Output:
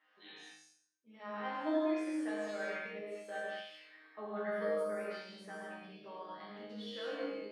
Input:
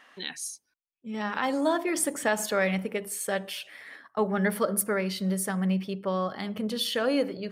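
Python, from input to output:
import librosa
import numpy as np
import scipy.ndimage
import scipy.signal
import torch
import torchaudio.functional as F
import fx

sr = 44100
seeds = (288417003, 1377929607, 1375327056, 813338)

y = fx.bandpass_edges(x, sr, low_hz=230.0, high_hz=3500.0)
y = fx.resonator_bank(y, sr, root=44, chord='fifth', decay_s=0.56)
y = fx.rev_gated(y, sr, seeds[0], gate_ms=250, shape='flat', drr_db=-5.0)
y = y * 10.0 ** (-2.0 / 20.0)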